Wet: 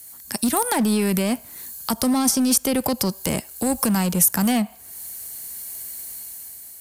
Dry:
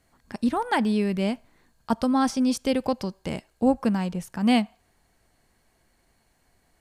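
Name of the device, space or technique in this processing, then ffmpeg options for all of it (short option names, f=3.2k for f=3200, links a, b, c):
FM broadcast chain: -filter_complex "[0:a]highpass=51,dynaudnorm=f=240:g=7:m=8dB,acrossover=split=310|680|1900[a][b][c][d];[a]acompressor=threshold=-21dB:ratio=4[e];[b]acompressor=threshold=-25dB:ratio=4[f];[c]acompressor=threshold=-30dB:ratio=4[g];[d]acompressor=threshold=-47dB:ratio=4[h];[e][f][g][h]amix=inputs=4:normalize=0,aemphasis=mode=production:type=75fm,alimiter=limit=-17.5dB:level=0:latency=1:release=21,asoftclip=type=hard:threshold=-20dB,lowpass=f=15k:w=0.5412,lowpass=f=15k:w=1.3066,aemphasis=mode=production:type=75fm,volume=5dB"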